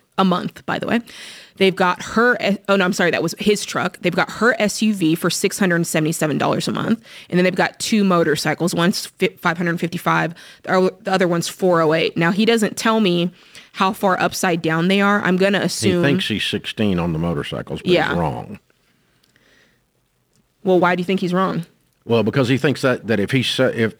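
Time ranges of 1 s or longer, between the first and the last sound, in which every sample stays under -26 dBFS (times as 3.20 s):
18.55–20.65 s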